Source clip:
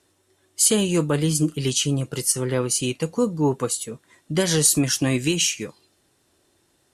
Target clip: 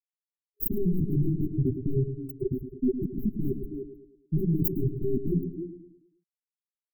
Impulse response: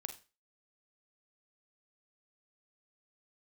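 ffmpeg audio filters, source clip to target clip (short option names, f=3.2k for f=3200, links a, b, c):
-filter_complex "[0:a]afftfilt=real='re*gte(hypot(re,im),0.562)':imag='im*gte(hypot(re,im),0.562)':win_size=1024:overlap=0.75,aeval=exprs='0.299*(cos(1*acos(clip(val(0)/0.299,-1,1)))-cos(1*PI/2))+0.0531*(cos(4*acos(clip(val(0)/0.299,-1,1)))-cos(4*PI/2))+0.0422*(cos(5*acos(clip(val(0)/0.299,-1,1)))-cos(5*PI/2))+0.106*(cos(6*acos(clip(val(0)/0.299,-1,1)))-cos(6*PI/2))':c=same,highshelf=f=5.2k:g=10,asplit=2[a][b];[b]adelay=310,highpass=300,lowpass=3.4k,asoftclip=type=hard:threshold=-18dB,volume=-14dB[c];[a][c]amix=inputs=2:normalize=0,aeval=exprs='0.1*(abs(mod(val(0)/0.1+3,4)-2)-1)':c=same,asplit=2[d][e];[e]adelay=108,lowpass=f=2.6k:p=1,volume=-9dB,asplit=2[f][g];[g]adelay=108,lowpass=f=2.6k:p=1,volume=0.47,asplit=2[h][i];[i]adelay=108,lowpass=f=2.6k:p=1,volume=0.47,asplit=2[j][k];[k]adelay=108,lowpass=f=2.6k:p=1,volume=0.47,asplit=2[l][m];[m]adelay=108,lowpass=f=2.6k:p=1,volume=0.47[n];[f][h][j][l][n]amix=inputs=5:normalize=0[o];[d][o]amix=inputs=2:normalize=0,afftfilt=real='re*(1-between(b*sr/4096,410,12000))':imag='im*(1-between(b*sr/4096,410,12000))':win_size=4096:overlap=0.75,volume=3.5dB"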